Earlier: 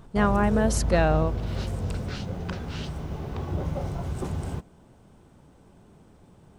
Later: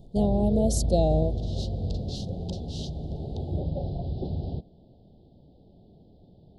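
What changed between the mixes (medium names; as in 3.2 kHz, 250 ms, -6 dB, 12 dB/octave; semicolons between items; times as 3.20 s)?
first sound: add steep low-pass 4.9 kHz 96 dB/octave; second sound +4.0 dB; master: add elliptic band-stop 710–3600 Hz, stop band 40 dB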